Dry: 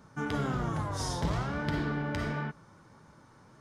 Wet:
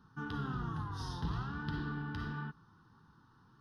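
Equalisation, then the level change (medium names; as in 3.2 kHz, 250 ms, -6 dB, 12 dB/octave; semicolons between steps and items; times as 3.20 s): treble shelf 8.5 kHz -9 dB; static phaser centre 2.2 kHz, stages 6; -5.0 dB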